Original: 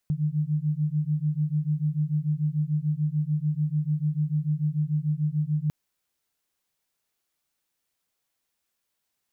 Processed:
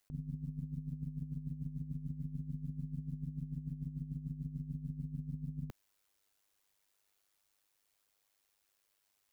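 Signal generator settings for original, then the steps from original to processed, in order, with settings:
two tones that beat 148 Hz, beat 6.8 Hz, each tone −26 dBFS 5.60 s
parametric band 180 Hz −10 dB 0.84 octaves
amplitude modulation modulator 100 Hz, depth 60%
compressor whose output falls as the input rises −40 dBFS, ratio −0.5

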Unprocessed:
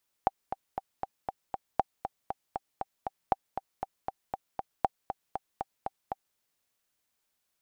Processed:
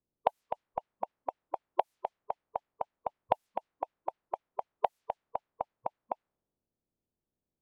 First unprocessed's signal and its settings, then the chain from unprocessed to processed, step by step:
click track 236 BPM, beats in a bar 6, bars 4, 779 Hz, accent 9 dB −10 dBFS
spectral magnitudes quantised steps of 30 dB
low-pass that shuts in the quiet parts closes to 350 Hz, open at −32.5 dBFS
in parallel at +0.5 dB: downward compressor, threshold −42 dBFS

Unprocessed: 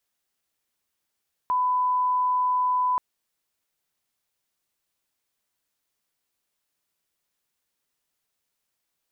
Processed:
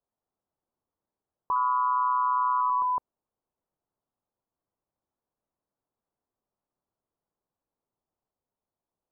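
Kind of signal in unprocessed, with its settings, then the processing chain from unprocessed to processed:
line-up tone −20 dBFS 1.48 s
low-pass filter 1,000 Hz 24 dB per octave
delay with pitch and tempo change per echo 166 ms, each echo +2 semitones, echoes 3, each echo −6 dB

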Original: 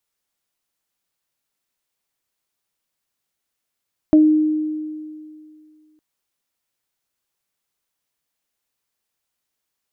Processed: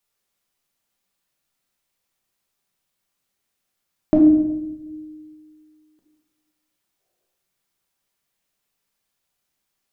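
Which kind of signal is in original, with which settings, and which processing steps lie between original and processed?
harmonic partials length 1.86 s, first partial 308 Hz, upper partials −9 dB, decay 2.32 s, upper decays 0.20 s, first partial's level −7 dB
gain on a spectral selection 0:07.00–0:07.30, 340–780 Hz +12 dB
rectangular room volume 370 cubic metres, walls mixed, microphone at 1.2 metres

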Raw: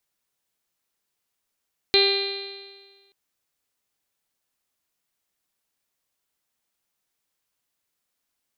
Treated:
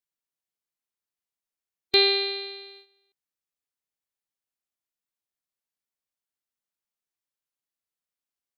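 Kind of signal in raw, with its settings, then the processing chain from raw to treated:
stiff-string partials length 1.18 s, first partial 394 Hz, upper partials −12/−19.5/−17.5/−12/−6/−12/−11/−6/2/−17 dB, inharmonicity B 0.00079, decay 1.50 s, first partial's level −18 dB
harmonic and percussive parts rebalanced percussive −4 dB
noise gate −49 dBFS, range −12 dB

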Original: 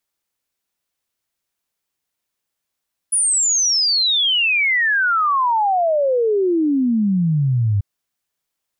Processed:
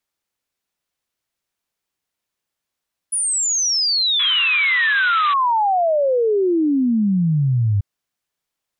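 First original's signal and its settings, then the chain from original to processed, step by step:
exponential sine sweep 10,000 Hz → 97 Hz 4.69 s −14 dBFS
high-shelf EQ 7,600 Hz −5.5 dB
sound drawn into the spectrogram noise, 0:04.19–0:05.34, 1,000–4,000 Hz −28 dBFS

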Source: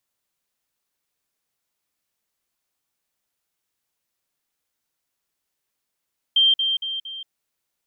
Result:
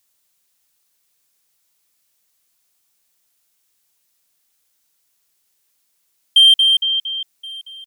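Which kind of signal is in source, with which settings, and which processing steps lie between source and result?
level staircase 3,160 Hz −13 dBFS, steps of −6 dB, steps 4, 0.18 s 0.05 s
high-shelf EQ 3,000 Hz +10.5 dB
in parallel at −4 dB: hard clipping −16.5 dBFS
on the sum: single-tap delay 1,073 ms −23 dB

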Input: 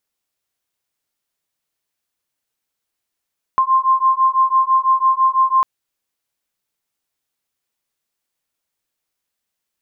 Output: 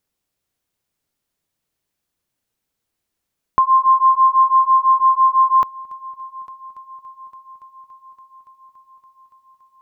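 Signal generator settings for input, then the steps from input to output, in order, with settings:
two tones that beat 1,050 Hz, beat 6 Hz, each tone −15 dBFS 2.05 s
low-shelf EQ 440 Hz +10 dB
echo machine with several playback heads 284 ms, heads first and third, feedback 69%, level −22.5 dB

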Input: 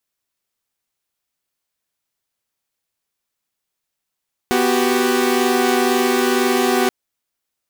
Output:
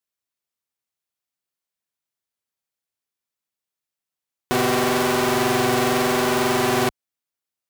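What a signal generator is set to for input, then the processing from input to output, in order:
held notes B3/F#4/G4 saw, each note −16.5 dBFS 2.38 s
wavefolder on the positive side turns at −19 dBFS
high-pass filter 52 Hz 12 dB per octave
expander for the loud parts 1.5 to 1, over −36 dBFS

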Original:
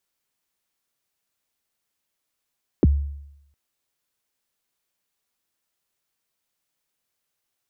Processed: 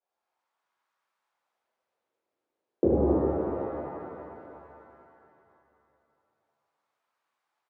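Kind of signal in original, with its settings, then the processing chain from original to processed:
synth kick length 0.71 s, from 450 Hz, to 71 Hz, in 28 ms, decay 0.82 s, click off, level −10 dB
LFO wah 0.32 Hz 410–1,100 Hz, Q 2.4
single-tap delay 241 ms −10 dB
reverb with rising layers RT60 3 s, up +7 semitones, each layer −8 dB, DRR −11.5 dB

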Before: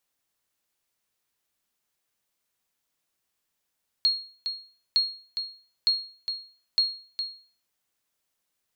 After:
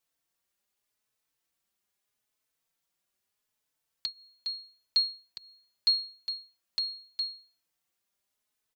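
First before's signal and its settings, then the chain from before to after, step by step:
ping with an echo 4,280 Hz, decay 0.43 s, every 0.91 s, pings 4, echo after 0.41 s, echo −8.5 dB −15 dBFS
barber-pole flanger 4.1 ms +0.8 Hz

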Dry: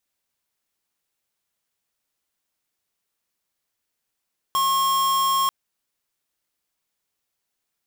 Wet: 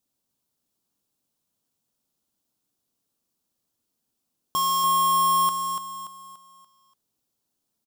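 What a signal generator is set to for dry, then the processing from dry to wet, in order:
tone square 1,080 Hz −20.5 dBFS 0.94 s
octave-band graphic EQ 125/250/2,000 Hz +5/+9/−11 dB
repeating echo 289 ms, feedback 39%, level −7 dB

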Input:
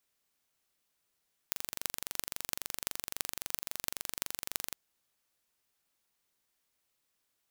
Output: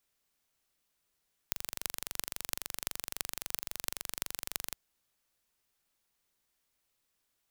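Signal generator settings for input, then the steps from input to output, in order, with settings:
impulse train 23.7 per second, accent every 8, −3 dBFS 3.21 s
low-shelf EQ 63 Hz +8 dB

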